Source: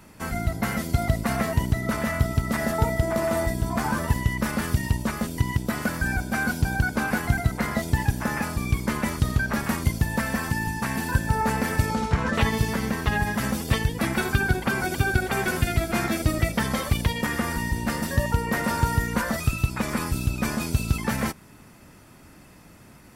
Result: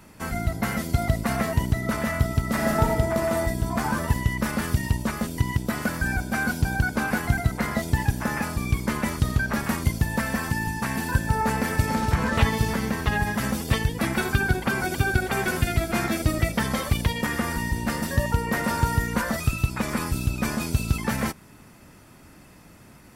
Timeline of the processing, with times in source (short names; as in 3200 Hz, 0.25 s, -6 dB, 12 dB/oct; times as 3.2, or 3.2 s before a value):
2.5–2.91 reverb throw, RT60 1 s, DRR 1 dB
11.58–12.15 echo throw 0.29 s, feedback 50%, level -6 dB